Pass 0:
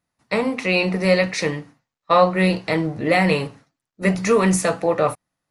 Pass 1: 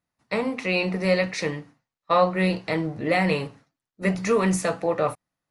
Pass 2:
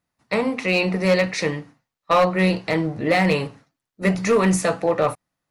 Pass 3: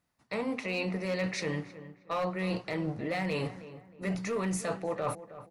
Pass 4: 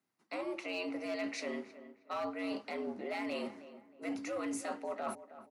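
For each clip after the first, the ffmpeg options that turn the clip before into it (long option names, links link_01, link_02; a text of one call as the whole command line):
ffmpeg -i in.wav -af "highshelf=frequency=9600:gain=-5.5,volume=-4.5dB" out.wav
ffmpeg -i in.wav -af "asoftclip=type=hard:threshold=-15dB,volume=4dB" out.wav
ffmpeg -i in.wav -filter_complex "[0:a]alimiter=limit=-15dB:level=0:latency=1:release=416,areverse,acompressor=threshold=-30dB:ratio=6,areverse,asplit=2[link_01][link_02];[link_02]adelay=315,lowpass=frequency=1800:poles=1,volume=-14dB,asplit=2[link_03][link_04];[link_04]adelay=315,lowpass=frequency=1800:poles=1,volume=0.36,asplit=2[link_05][link_06];[link_06]adelay=315,lowpass=frequency=1800:poles=1,volume=0.36[link_07];[link_01][link_03][link_05][link_07]amix=inputs=4:normalize=0" out.wav
ffmpeg -i in.wav -af "afreqshift=93,volume=-6dB" out.wav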